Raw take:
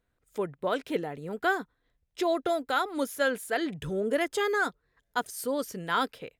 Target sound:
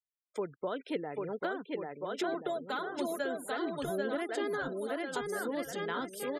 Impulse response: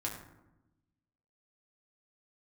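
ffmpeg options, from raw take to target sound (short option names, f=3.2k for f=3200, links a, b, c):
-filter_complex "[0:a]asettb=1/sr,asplit=3[a][b][c];[a]atrim=end=2.344[d];[b]atrim=start=2.34:end=3.24,asetpts=PTS-STARTPTS,afade=t=in:d=0.004:c=qsin,afade=t=out:st=0.896:d=0.004:c=qsin,aecho=1:1:4.8:0.73,atrim=end_sample=39690[e];[c]atrim=start=3.236[f];[d][e]acrossfade=d=0.004:c1=hsin:c2=qsin[g];[g][f]acrossfade=d=0.004:c1=qsin:c2=hsin,aecho=1:1:790|1382|1827|2160|2410:0.631|0.398|0.251|0.158|0.1,acrossover=split=310[h][i];[i]acompressor=threshold=-37dB:ratio=8[j];[h][j]amix=inputs=2:normalize=0,bass=f=250:g=-12,treble=f=4k:g=0,afftfilt=real='re*gte(hypot(re,im),0.00282)':imag='im*gte(hypot(re,im),0.00282)':win_size=1024:overlap=0.75,volume=2.5dB"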